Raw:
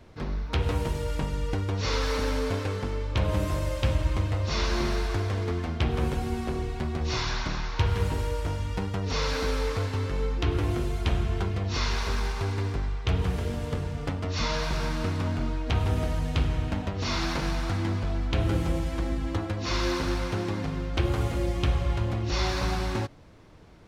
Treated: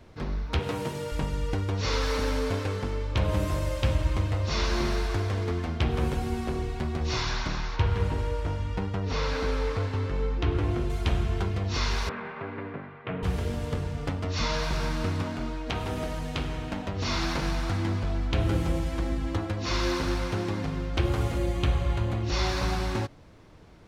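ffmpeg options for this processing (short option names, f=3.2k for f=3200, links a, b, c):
-filter_complex "[0:a]asettb=1/sr,asplit=3[a][b][c];[a]atrim=end=0.594[d];[b]atrim=start=0.59:end=1.12,asetpts=PTS-STARTPTS,afade=t=in:d=0.004:c=qsin,afade=t=out:st=0.526:d=0.004:c=qsin,highpass=f=120:w=0.5412,highpass=f=120:w=1.3066[e];[c]atrim=start=1.116[f];[d][e]acrossfade=d=0.004:c1=hsin:c2=qsin[g];[g][f]acrossfade=d=0.004:c1=qsin:c2=hsin,asettb=1/sr,asplit=3[h][i][j];[h]atrim=end=7.764[k];[i]atrim=start=7.76:end=10.9,asetpts=PTS-STARTPTS,afade=t=in:d=0.004:c=qsin,afade=t=out:st=3.136:d=0.004:c=qsin,aemphasis=mode=reproduction:type=50kf[l];[j]atrim=start=10.896[m];[k][l]acrossfade=d=0.004:c1=hsin:c2=qsin[n];[n][m]acrossfade=d=0.004:c1=qsin:c2=hsin,asettb=1/sr,asplit=3[o][p][q];[o]atrim=end=12.094[r];[p]atrim=start=12.09:end=13.23,asetpts=PTS-STARTPTS,afade=t=in:d=0.004:c=qsin,afade=t=out:st=1.136:d=0.004:c=qsin,highpass=f=150:w=0.5412,highpass=f=150:w=1.3066,equalizer=f=370:t=q:w=4:g=-5,equalizer=f=570:t=q:w=4:g=4,equalizer=f=830:t=q:w=4:g=-5,lowpass=f=2.3k:w=0.5412,lowpass=f=2.3k:w=1.3066[s];[q]atrim=start=13.226[t];[r][s]acrossfade=d=0.004:c1=hsin:c2=qsin[u];[u][t]acrossfade=d=0.004:c1=qsin:c2=hsin,asettb=1/sr,asplit=3[v][w][x];[v]atrim=end=15.234[y];[w]atrim=start=15.23:end=16.89,asetpts=PTS-STARTPTS,afade=t=in:d=0.004:c=qsin,afade=t=out:st=1.656:d=0.004:c=qsin,equalizer=f=78:w=1:g=-11.5[z];[x]atrim=start=16.886[aa];[y][z]acrossfade=d=0.004:c1=hsin:c2=qsin[ab];[ab][aa]acrossfade=d=0.004:c1=qsin:c2=hsin,asettb=1/sr,asplit=3[ac][ad][ae];[ac]atrim=end=21.384[af];[ad]atrim=start=21.38:end=22.23,asetpts=PTS-STARTPTS,afade=t=in:d=0.004:c=qsin,afade=t=out:st=0.846:d=0.004:c=qsin,bandreject=f=5.3k:w=6.5[ag];[ae]atrim=start=22.226[ah];[af][ag]acrossfade=d=0.004:c1=hsin:c2=qsin[ai];[ai][ah]acrossfade=d=0.004:c1=qsin:c2=hsin"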